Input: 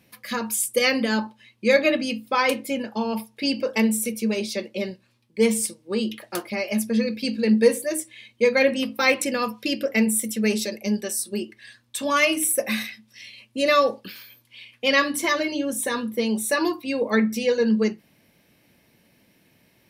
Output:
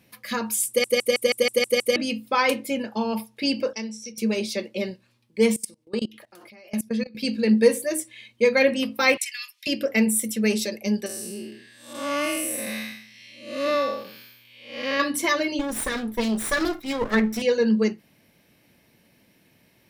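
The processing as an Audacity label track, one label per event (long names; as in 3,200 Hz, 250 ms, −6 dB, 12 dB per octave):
0.680000	0.680000	stutter in place 0.16 s, 8 plays
3.730000	4.180000	transistor ladder low-pass 5,800 Hz, resonance 85%
5.560000	7.150000	output level in coarse steps of 24 dB
9.170000	9.670000	elliptic high-pass filter 1,900 Hz, stop band 80 dB
11.060000	15.000000	spectrum smeared in time width 251 ms
15.590000	17.420000	lower of the sound and its delayed copy delay 0.55 ms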